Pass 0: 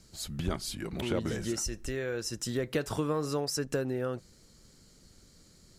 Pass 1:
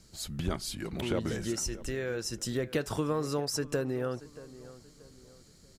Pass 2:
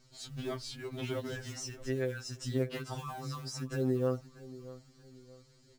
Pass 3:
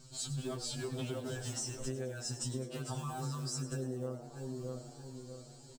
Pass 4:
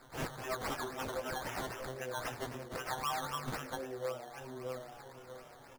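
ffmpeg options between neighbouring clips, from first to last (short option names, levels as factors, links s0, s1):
-filter_complex "[0:a]asplit=2[s0][s1];[s1]adelay=632,lowpass=f=2400:p=1,volume=0.141,asplit=2[s2][s3];[s3]adelay=632,lowpass=f=2400:p=1,volume=0.38,asplit=2[s4][s5];[s5]adelay=632,lowpass=f=2400:p=1,volume=0.38[s6];[s0][s2][s4][s6]amix=inputs=4:normalize=0"
-af "lowpass=6300,acrusher=bits=6:mode=log:mix=0:aa=0.000001,afftfilt=real='re*2.45*eq(mod(b,6),0)':imag='im*2.45*eq(mod(b,6),0)':win_size=2048:overlap=0.75,volume=0.841"
-filter_complex "[0:a]equalizer=f=160:t=o:w=0.33:g=11,equalizer=f=2000:t=o:w=0.33:g=-11,equalizer=f=8000:t=o:w=0.33:g=12,acompressor=threshold=0.00891:ratio=12,asplit=2[s0][s1];[s1]asplit=6[s2][s3][s4][s5][s6][s7];[s2]adelay=102,afreqshift=110,volume=0.224[s8];[s3]adelay=204,afreqshift=220,volume=0.127[s9];[s4]adelay=306,afreqshift=330,volume=0.0724[s10];[s5]adelay=408,afreqshift=440,volume=0.0417[s11];[s6]adelay=510,afreqshift=550,volume=0.0237[s12];[s7]adelay=612,afreqshift=660,volume=0.0135[s13];[s8][s9][s10][s11][s12][s13]amix=inputs=6:normalize=0[s14];[s0][s14]amix=inputs=2:normalize=0,volume=1.88"
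-filter_complex "[0:a]acrossover=split=560 3600:gain=0.1 1 0.2[s0][s1][s2];[s0][s1][s2]amix=inputs=3:normalize=0,acrossover=split=780[s3][s4];[s3]flanger=delay=16:depth=3.3:speed=0.43[s5];[s4]acrusher=samples=14:mix=1:aa=0.000001:lfo=1:lforange=8.4:lforate=3.8[s6];[s5][s6]amix=inputs=2:normalize=0,volume=3.76"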